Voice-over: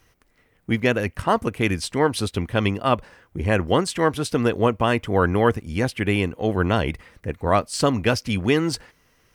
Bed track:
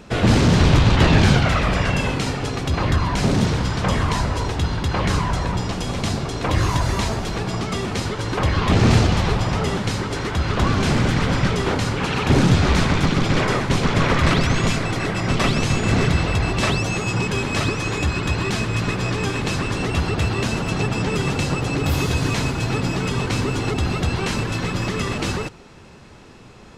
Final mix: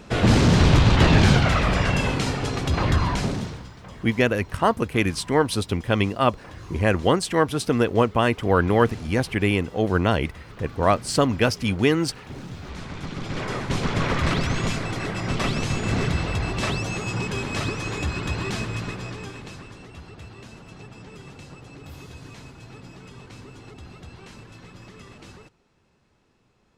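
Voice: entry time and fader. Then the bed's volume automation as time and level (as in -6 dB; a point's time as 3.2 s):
3.35 s, 0.0 dB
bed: 3.1 s -1.5 dB
3.77 s -22 dB
12.53 s -22 dB
13.76 s -5.5 dB
18.61 s -5.5 dB
19.88 s -21 dB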